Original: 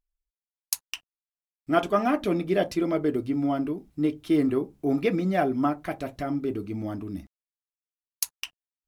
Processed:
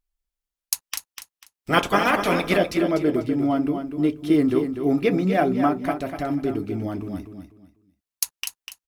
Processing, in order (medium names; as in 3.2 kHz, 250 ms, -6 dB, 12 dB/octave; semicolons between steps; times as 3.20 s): 0.84–2.56 s: spectral peaks clipped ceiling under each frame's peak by 20 dB; feedback delay 246 ms, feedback 26%, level -8 dB; trim +3.5 dB